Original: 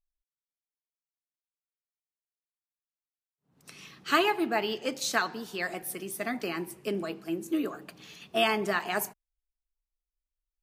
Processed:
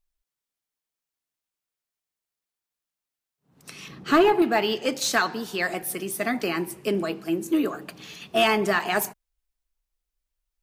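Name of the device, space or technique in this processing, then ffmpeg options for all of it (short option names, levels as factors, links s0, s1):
saturation between pre-emphasis and de-emphasis: -filter_complex "[0:a]asettb=1/sr,asplit=3[s0][s1][s2];[s0]atrim=end=3.884[s3];[s1]atrim=start=3.88:end=4.42,asetpts=PTS-STARTPTS,afade=t=in:d=0.004:c=qsin,afade=t=out:st=0.536:d=0.004:c=qsin,tiltshelf=f=1100:g=7[s4];[s2]atrim=start=4.416[s5];[s3][s4]acrossfade=d=0.004:c1=hsin:c2=qsin[s6];[s6][s5]acrossfade=d=0.004:c1=qsin:c2=hsin,highshelf=f=4900:g=11.5,asoftclip=type=tanh:threshold=0.141,highshelf=f=4900:g=-11.5,volume=2.24"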